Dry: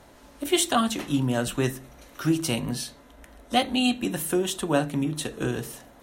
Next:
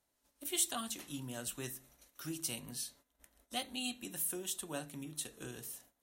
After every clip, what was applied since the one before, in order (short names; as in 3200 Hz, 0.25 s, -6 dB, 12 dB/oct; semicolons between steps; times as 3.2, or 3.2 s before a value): gate -48 dBFS, range -14 dB; pre-emphasis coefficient 0.8; gain -6 dB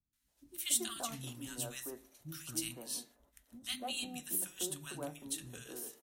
three bands offset in time lows, highs, mids 0.13/0.28 s, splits 240/1300 Hz; gain +1 dB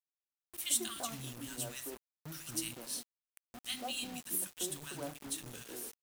bit-crush 8-bit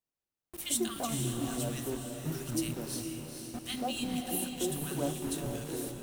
tilt shelf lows +6.5 dB, about 790 Hz; diffused feedback echo 0.467 s, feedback 45%, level -5.5 dB; gain +6 dB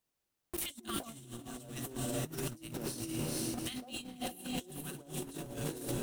negative-ratio compressor -41 dBFS, ratio -0.5; gain +1 dB